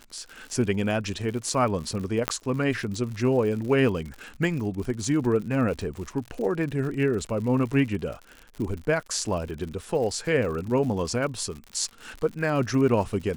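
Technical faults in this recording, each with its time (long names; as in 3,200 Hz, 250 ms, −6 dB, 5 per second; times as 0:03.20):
surface crackle 100 per second −34 dBFS
0:02.28: click −7 dBFS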